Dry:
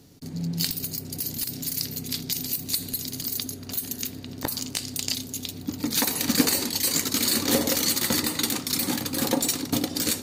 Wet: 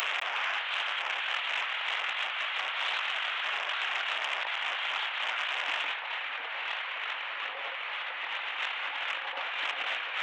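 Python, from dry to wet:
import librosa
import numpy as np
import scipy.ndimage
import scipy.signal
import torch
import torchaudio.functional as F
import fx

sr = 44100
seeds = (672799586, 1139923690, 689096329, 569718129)

p1 = fx.delta_mod(x, sr, bps=16000, step_db=-29.0)
p2 = scipy.signal.sosfilt(scipy.signal.butter(4, 660.0, 'highpass', fs=sr, output='sos'), p1)
p3 = fx.tilt_eq(p2, sr, slope=4.0)
p4 = fx.over_compress(p3, sr, threshold_db=-38.0, ratio=-1.0)
p5 = p4 + fx.echo_single(p4, sr, ms=216, db=-21.5, dry=0)
p6 = fx.transformer_sat(p5, sr, knee_hz=4000.0)
y = p6 * 10.0 ** (4.5 / 20.0)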